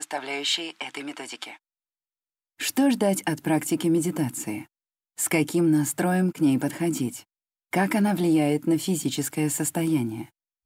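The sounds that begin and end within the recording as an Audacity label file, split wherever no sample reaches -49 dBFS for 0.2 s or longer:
2.590000	4.660000	sound
5.180000	7.230000	sound
7.730000	10.290000	sound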